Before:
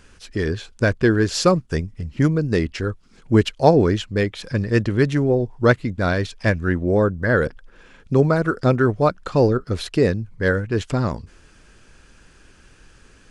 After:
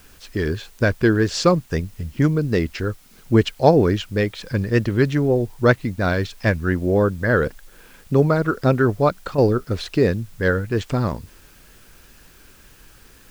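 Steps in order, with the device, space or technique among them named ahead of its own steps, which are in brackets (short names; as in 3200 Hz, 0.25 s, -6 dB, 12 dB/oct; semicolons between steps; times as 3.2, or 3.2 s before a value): worn cassette (LPF 6900 Hz; wow and flutter; level dips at 9.35, 30 ms -7 dB; white noise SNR 33 dB)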